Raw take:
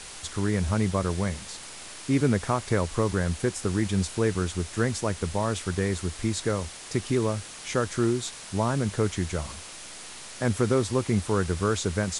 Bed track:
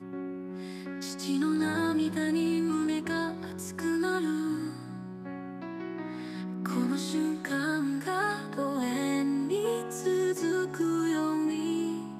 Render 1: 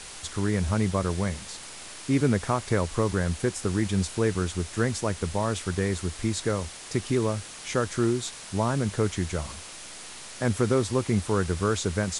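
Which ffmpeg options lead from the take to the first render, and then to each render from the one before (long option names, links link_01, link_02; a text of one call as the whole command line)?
ffmpeg -i in.wav -af anull out.wav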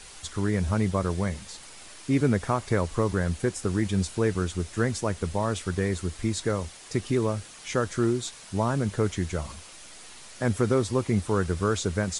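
ffmpeg -i in.wav -af "afftdn=noise_reduction=6:noise_floor=-42" out.wav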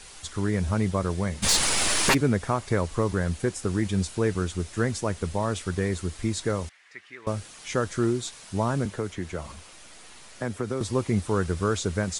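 ffmpeg -i in.wav -filter_complex "[0:a]asplit=3[link_01][link_02][link_03];[link_01]afade=type=out:start_time=1.42:duration=0.02[link_04];[link_02]aeval=exprs='0.178*sin(PI/2*8.91*val(0)/0.178)':channel_layout=same,afade=type=in:start_time=1.42:duration=0.02,afade=type=out:start_time=2.13:duration=0.02[link_05];[link_03]afade=type=in:start_time=2.13:duration=0.02[link_06];[link_04][link_05][link_06]amix=inputs=3:normalize=0,asettb=1/sr,asplit=3[link_07][link_08][link_09];[link_07]atrim=end=6.694[link_10];[link_08]atrim=start=6.69:end=7.27,asetpts=PTS-STARTPTS,afade=type=in:duration=0.004:curve=qsin,afade=type=out:start_time=0.576:duration=0.004:curve=qsin,bandpass=frequency=1900:width_type=q:width=3.1[link_11];[link_09]atrim=start=7.266[link_12];[link_10][link_11]acrossfade=duration=0.004:curve1=hsin:curve2=qsin[link_13];[link_13][link_12]acrossfade=duration=0.004:curve1=qsin:curve2=hsin,asettb=1/sr,asplit=3[link_14][link_15][link_16];[link_14]atrim=end=8.854[link_17];[link_15]atrim=start=8.85:end=10.81,asetpts=PTS-STARTPTS,afade=type=in:duration=0.004:curve=qsin,afade=type=out:start_time=1.956:duration=0.004:curve=qsin,acrossover=split=210|3000[link_18][link_19][link_20];[link_18]acompressor=threshold=-36dB:ratio=4[link_21];[link_19]acompressor=threshold=-28dB:ratio=4[link_22];[link_20]acompressor=threshold=-49dB:ratio=4[link_23];[link_21][link_22][link_23]amix=inputs=3:normalize=0[link_24];[link_16]atrim=start=10.806[link_25];[link_17][link_24]acrossfade=duration=0.004:curve1=hsin:curve2=qsin[link_26];[link_26][link_25]acrossfade=duration=0.004:curve1=qsin:curve2=hsin" out.wav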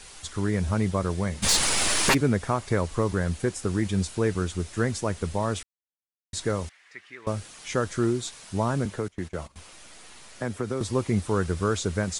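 ffmpeg -i in.wav -filter_complex "[0:a]asettb=1/sr,asplit=3[link_01][link_02][link_03];[link_01]atrim=end=9.084[link_04];[link_02]atrim=start=9.08:end=9.56,asetpts=PTS-STARTPTS,afade=type=in:duration=0.004:curve=qsin,afade=type=out:start_time=0.476:duration=0.004:curve=qsin,agate=range=-20dB:threshold=-39dB:ratio=16:release=100:detection=peak[link_05];[link_03]atrim=start=9.556[link_06];[link_04][link_05]acrossfade=duration=0.004:curve1=hsin:curve2=qsin[link_07];[link_07][link_06]acrossfade=duration=0.004:curve1=qsin:curve2=hsin,asplit=3[link_08][link_09][link_10];[link_08]atrim=end=5.63,asetpts=PTS-STARTPTS,afade=type=out:start_time=5.626:duration=0.004:curve=hsin[link_11];[link_09]atrim=start=5.63:end=6.33,asetpts=PTS-STARTPTS,volume=0[link_12];[link_10]atrim=start=6.33,asetpts=PTS-STARTPTS,afade=type=in:duration=0.004:curve=hsin[link_13];[link_11][link_12][link_13]concat=n=3:v=0:a=1" out.wav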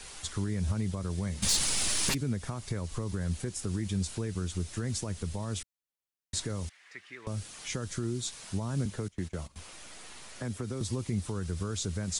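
ffmpeg -i in.wav -filter_complex "[0:a]alimiter=limit=-19.5dB:level=0:latency=1:release=132,acrossover=split=250|3000[link_01][link_02][link_03];[link_02]acompressor=threshold=-47dB:ratio=2[link_04];[link_01][link_04][link_03]amix=inputs=3:normalize=0" out.wav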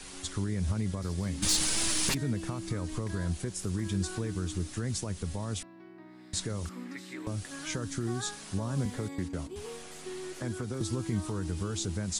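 ffmpeg -i in.wav -i bed.wav -filter_complex "[1:a]volume=-13.5dB[link_01];[0:a][link_01]amix=inputs=2:normalize=0" out.wav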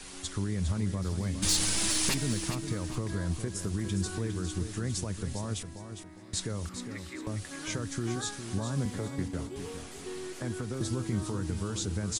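ffmpeg -i in.wav -af "aecho=1:1:407|814|1221:0.355|0.103|0.0298" out.wav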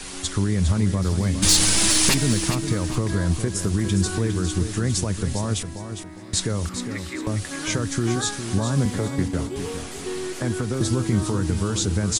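ffmpeg -i in.wav -af "volume=10dB" out.wav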